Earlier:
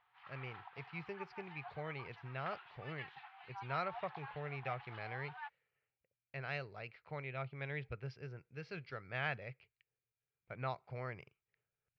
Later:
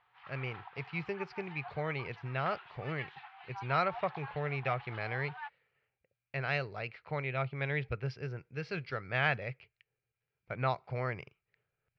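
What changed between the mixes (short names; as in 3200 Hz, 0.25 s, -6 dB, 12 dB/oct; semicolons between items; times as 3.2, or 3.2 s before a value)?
speech +8.5 dB; background +4.0 dB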